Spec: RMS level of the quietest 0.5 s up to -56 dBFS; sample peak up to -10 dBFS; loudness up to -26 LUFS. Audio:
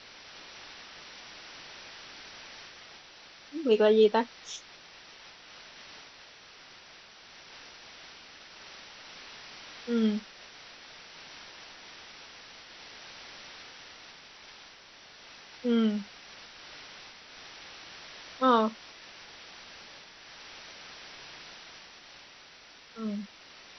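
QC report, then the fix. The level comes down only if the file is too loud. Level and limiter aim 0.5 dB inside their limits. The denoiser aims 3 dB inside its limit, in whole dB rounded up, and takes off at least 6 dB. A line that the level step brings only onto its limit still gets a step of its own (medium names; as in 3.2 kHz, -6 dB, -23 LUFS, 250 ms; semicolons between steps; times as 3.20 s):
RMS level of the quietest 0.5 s -53 dBFS: fail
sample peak -11.0 dBFS: pass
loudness -31.0 LUFS: pass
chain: noise reduction 6 dB, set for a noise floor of -53 dBFS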